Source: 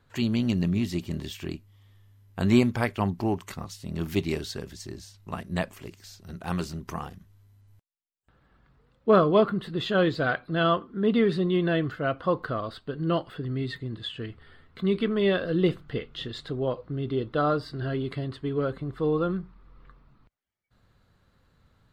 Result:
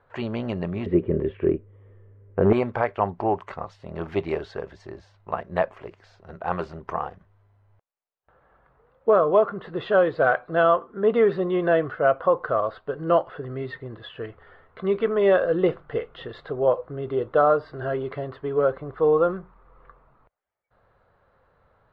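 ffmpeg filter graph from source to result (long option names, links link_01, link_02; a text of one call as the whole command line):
ffmpeg -i in.wav -filter_complex "[0:a]asettb=1/sr,asplit=3[link_01][link_02][link_03];[link_01]atrim=end=0.864[link_04];[link_02]atrim=start=0.86:end=2.53,asetpts=PTS-STARTPTS,afade=type=in:duration=0.004:curve=qsin,afade=type=out:start_time=1.666:duration=0.004:curve=qsin,lowpass=frequency=2500:width=0.5412,lowpass=frequency=2500:width=1.3066,lowshelf=frequency=580:width_type=q:width=3:gain=9,asoftclip=type=hard:threshold=-6dB[link_05];[link_03]atrim=start=2.526[link_06];[link_04][link_05]acrossfade=duration=0.004:curve1=hsin:curve2=qsin[link_07];[link_07][link_06]acrossfade=duration=0.004:curve1=qsin:curve2=hsin,lowpass=1400,lowshelf=frequency=370:width_type=q:width=1.5:gain=-11,alimiter=limit=-16.5dB:level=0:latency=1:release=282,volume=8dB" out.wav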